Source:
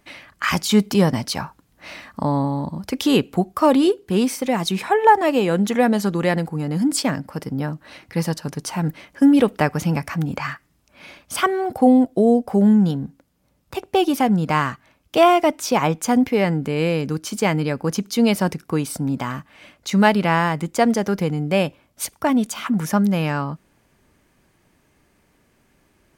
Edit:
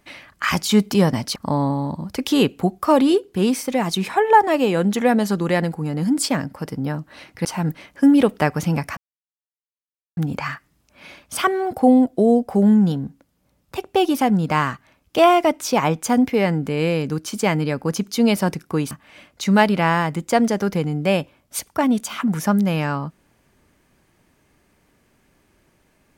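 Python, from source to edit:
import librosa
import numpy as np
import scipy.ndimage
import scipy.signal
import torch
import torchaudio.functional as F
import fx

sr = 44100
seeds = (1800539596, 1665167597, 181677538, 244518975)

y = fx.edit(x, sr, fx.cut(start_s=1.36, length_s=0.74),
    fx.cut(start_s=8.19, length_s=0.45),
    fx.insert_silence(at_s=10.16, length_s=1.2),
    fx.cut(start_s=18.9, length_s=0.47), tone=tone)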